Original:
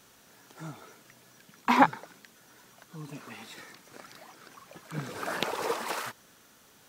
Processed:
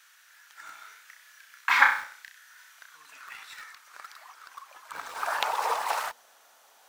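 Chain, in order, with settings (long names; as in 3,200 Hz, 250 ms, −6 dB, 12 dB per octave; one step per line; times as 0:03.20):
mains-hum notches 60/120/180/240/300/360/420/480 Hz
0:00.64–0:02.97: flutter between parallel walls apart 5.5 metres, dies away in 0.47 s
high-pass filter sweep 1,600 Hz → 720 Hz, 0:02.79–0:06.27
in parallel at −11.5 dB: bit-depth reduction 6 bits, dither none
on the sum: level −1 dB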